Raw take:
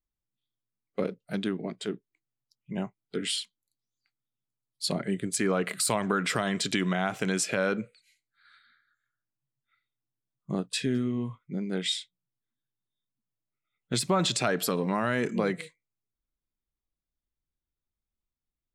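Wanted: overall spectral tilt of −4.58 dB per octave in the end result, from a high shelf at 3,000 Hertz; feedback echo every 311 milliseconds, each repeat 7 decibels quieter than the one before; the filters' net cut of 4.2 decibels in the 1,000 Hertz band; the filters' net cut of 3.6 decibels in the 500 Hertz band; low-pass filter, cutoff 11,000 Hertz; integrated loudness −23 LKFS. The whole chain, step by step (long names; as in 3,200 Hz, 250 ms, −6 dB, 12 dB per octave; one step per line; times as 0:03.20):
low-pass filter 11,000 Hz
parametric band 500 Hz −3.5 dB
parametric band 1,000 Hz −4 dB
high-shelf EQ 3,000 Hz −5 dB
repeating echo 311 ms, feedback 45%, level −7 dB
level +8.5 dB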